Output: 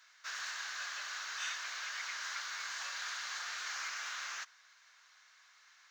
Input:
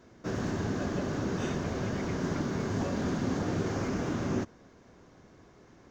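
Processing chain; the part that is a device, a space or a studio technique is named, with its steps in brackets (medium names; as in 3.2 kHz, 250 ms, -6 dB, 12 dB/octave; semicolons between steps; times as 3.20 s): headphones lying on a table (high-pass 1.4 kHz 24 dB/octave; peaking EQ 4.1 kHz +5 dB 0.28 oct); trim +4 dB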